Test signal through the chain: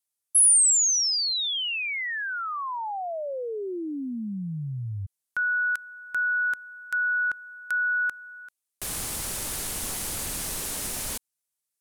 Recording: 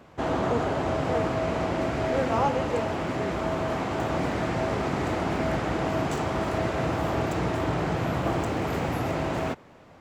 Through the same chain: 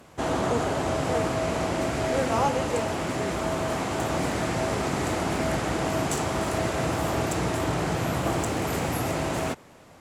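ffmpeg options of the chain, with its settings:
-af "equalizer=f=10000:t=o:w=1.5:g=15"

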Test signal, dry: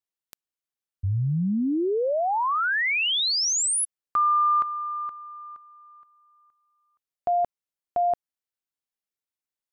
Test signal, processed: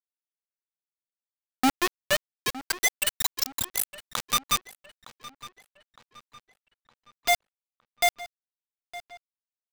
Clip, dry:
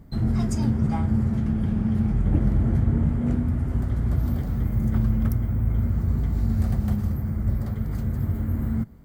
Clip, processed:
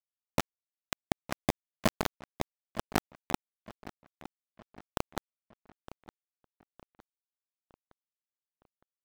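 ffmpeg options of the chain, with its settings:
-filter_complex "[0:a]afwtdn=0.0316,highpass=f=170:w=0.5412,highpass=f=170:w=1.3066,aeval=exprs='0.211*(cos(1*acos(clip(val(0)/0.211,-1,1)))-cos(1*PI/2))+0.00422*(cos(6*acos(clip(val(0)/0.211,-1,1)))-cos(6*PI/2))+0.00422*(cos(8*acos(clip(val(0)/0.211,-1,1)))-cos(8*PI/2))':c=same,aecho=1:1:3:0.42,alimiter=limit=0.0891:level=0:latency=1:release=63,acrossover=split=440[s0][s1];[s0]aeval=exprs='val(0)*(1-0.5/2+0.5/2*cos(2*PI*5.4*n/s))':c=same[s2];[s1]aeval=exprs='val(0)*(1-0.5/2-0.5/2*cos(2*PI*5.4*n/s))':c=same[s3];[s2][s3]amix=inputs=2:normalize=0,acrusher=bits=3:mix=0:aa=0.000001,asplit=2[s4][s5];[s5]adelay=912,lowpass=f=4200:p=1,volume=0.15,asplit=2[s6][s7];[s7]adelay=912,lowpass=f=4200:p=1,volume=0.48,asplit=2[s8][s9];[s9]adelay=912,lowpass=f=4200:p=1,volume=0.48,asplit=2[s10][s11];[s11]adelay=912,lowpass=f=4200:p=1,volume=0.48[s12];[s6][s8][s10][s12]amix=inputs=4:normalize=0[s13];[s4][s13]amix=inputs=2:normalize=0,volume=1.5"

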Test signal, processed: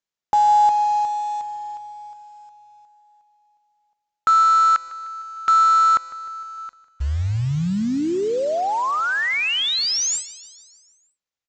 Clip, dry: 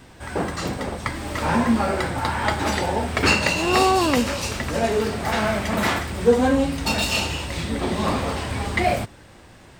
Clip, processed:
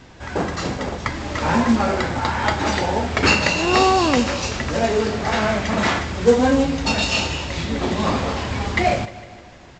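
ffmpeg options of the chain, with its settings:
-af "aresample=16000,acrusher=bits=5:mode=log:mix=0:aa=0.000001,aresample=44100,aecho=1:1:152|304|456|608|760|912:0.133|0.08|0.048|0.0288|0.0173|0.0104,volume=1.26"

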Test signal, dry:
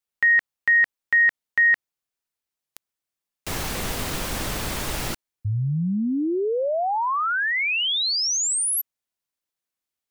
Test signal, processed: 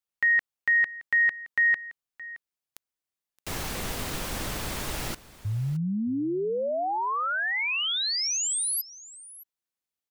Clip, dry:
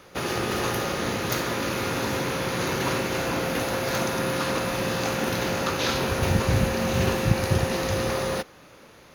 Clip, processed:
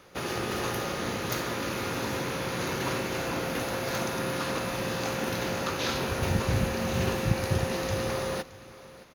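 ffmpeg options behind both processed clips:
-af "aecho=1:1:620:0.119,volume=0.596"

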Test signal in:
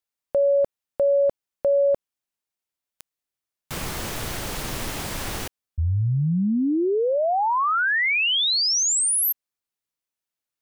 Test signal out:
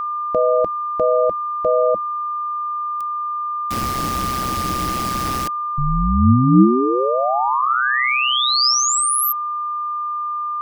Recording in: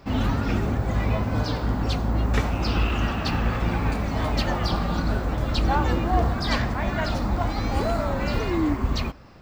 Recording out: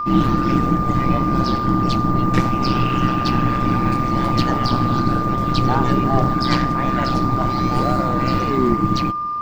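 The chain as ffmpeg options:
-af "equalizer=f=160:t=o:w=0.33:g=8,equalizer=f=250:t=o:w=0.33:g=11,equalizer=f=5000:t=o:w=0.33:g=4,aeval=exprs='val(0)*sin(2*PI*64*n/s)':c=same,aeval=exprs='val(0)+0.0501*sin(2*PI*1200*n/s)':c=same,volume=1.78"

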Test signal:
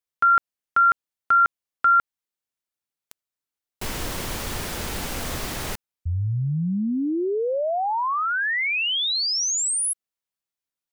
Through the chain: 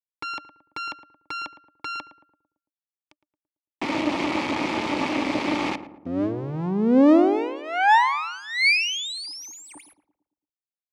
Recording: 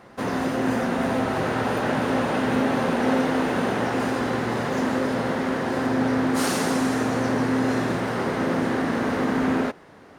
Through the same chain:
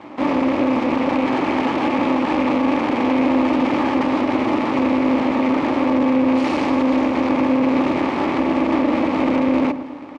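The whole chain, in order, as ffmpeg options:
-filter_complex "[0:a]adynamicequalizer=threshold=0.00355:dfrequency=4500:dqfactor=2.6:tfrequency=4500:tqfactor=2.6:attack=5:release=100:ratio=0.333:range=2:mode=boostabove:tftype=bell,acrusher=bits=9:mix=0:aa=0.000001,asoftclip=type=tanh:threshold=0.0422,asplit=3[s0][s1][s2];[s0]bandpass=f=300:t=q:w=8,volume=1[s3];[s1]bandpass=f=870:t=q:w=8,volume=0.501[s4];[s2]bandpass=f=2240:t=q:w=8,volume=0.355[s5];[s3][s4][s5]amix=inputs=3:normalize=0,aeval=exprs='max(val(0),0)':c=same,highpass=140,lowpass=6700,asplit=2[s6][s7];[s7]adelay=112,lowpass=f=1100:p=1,volume=0.266,asplit=2[s8][s9];[s9]adelay=112,lowpass=f=1100:p=1,volume=0.52,asplit=2[s10][s11];[s11]adelay=112,lowpass=f=1100:p=1,volume=0.52,asplit=2[s12][s13];[s13]adelay=112,lowpass=f=1100:p=1,volume=0.52,asplit=2[s14][s15];[s15]adelay=112,lowpass=f=1100:p=1,volume=0.52,asplit=2[s16][s17];[s17]adelay=112,lowpass=f=1100:p=1,volume=0.52[s18];[s8][s10][s12][s14][s16][s18]amix=inputs=6:normalize=0[s19];[s6][s19]amix=inputs=2:normalize=0,alimiter=level_in=53.1:limit=0.891:release=50:level=0:latency=1,volume=0.447"

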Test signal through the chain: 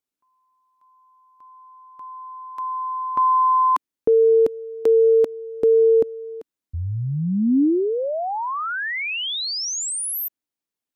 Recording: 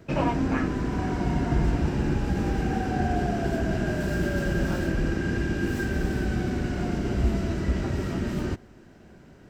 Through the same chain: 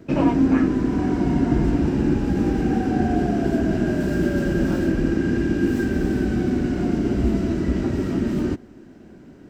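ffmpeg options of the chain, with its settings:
-af "equalizer=f=280:w=1.3:g=10.5"

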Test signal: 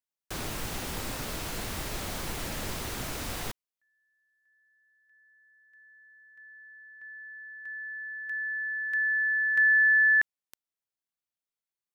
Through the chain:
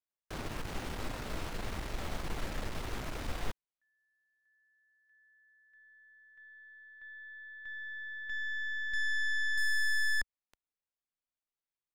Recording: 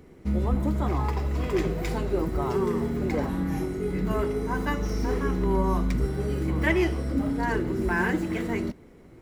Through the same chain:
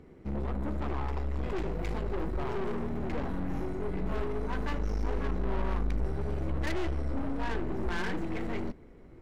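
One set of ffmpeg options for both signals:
-af "lowpass=f=2500:p=1,aeval=exprs='(tanh(35.5*val(0)+0.55)-tanh(0.55))/35.5':c=same,asubboost=boost=2:cutoff=72"

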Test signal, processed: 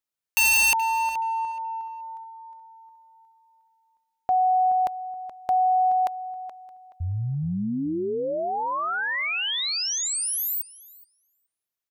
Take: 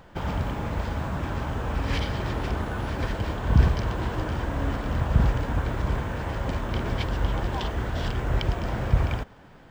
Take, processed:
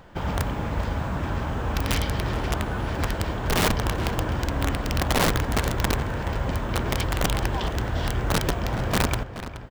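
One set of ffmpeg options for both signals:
-filter_complex "[0:a]aeval=exprs='(mod(7.5*val(0)+1,2)-1)/7.5':c=same,asplit=2[s0][s1];[s1]adelay=425,lowpass=f=3800:p=1,volume=0.251,asplit=2[s2][s3];[s3]adelay=425,lowpass=f=3800:p=1,volume=0.23,asplit=2[s4][s5];[s5]adelay=425,lowpass=f=3800:p=1,volume=0.23[s6];[s0][s2][s4][s6]amix=inputs=4:normalize=0,volume=1.19"

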